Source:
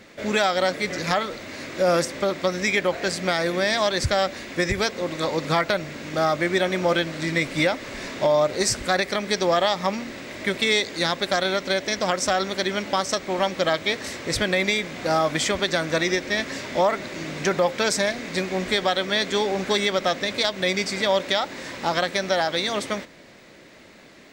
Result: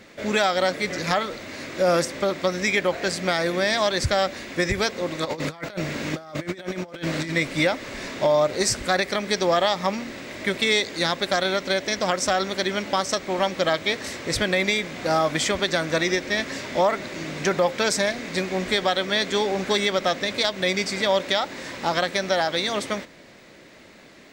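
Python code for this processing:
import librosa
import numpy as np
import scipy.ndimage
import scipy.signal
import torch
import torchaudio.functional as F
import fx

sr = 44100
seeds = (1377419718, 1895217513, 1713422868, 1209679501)

y = fx.over_compress(x, sr, threshold_db=-29.0, ratio=-0.5, at=(5.24, 7.31), fade=0.02)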